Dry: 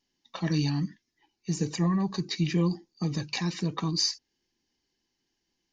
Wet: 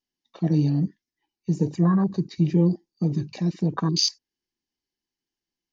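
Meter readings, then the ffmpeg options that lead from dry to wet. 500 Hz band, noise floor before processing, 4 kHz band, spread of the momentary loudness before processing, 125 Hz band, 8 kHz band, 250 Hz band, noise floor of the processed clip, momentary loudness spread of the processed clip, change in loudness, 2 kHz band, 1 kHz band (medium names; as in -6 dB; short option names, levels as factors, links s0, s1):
+6.0 dB, -81 dBFS, +2.5 dB, 8 LU, +6.0 dB, no reading, +6.0 dB, under -85 dBFS, 8 LU, +5.5 dB, -4.5 dB, +3.0 dB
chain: -af "afwtdn=0.0251,volume=2"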